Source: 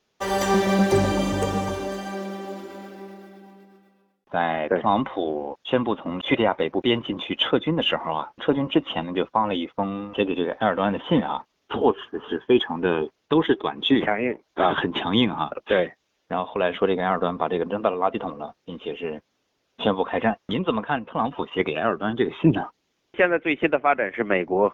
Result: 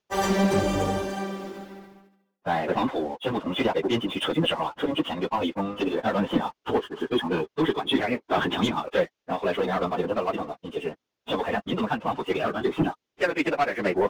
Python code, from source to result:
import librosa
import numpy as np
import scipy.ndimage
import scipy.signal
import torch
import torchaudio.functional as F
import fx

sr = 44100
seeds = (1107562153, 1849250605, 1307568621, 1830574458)

y = fx.leveller(x, sr, passes=2)
y = fx.stretch_vocoder_free(y, sr, factor=0.57)
y = y * 10.0 ** (-4.5 / 20.0)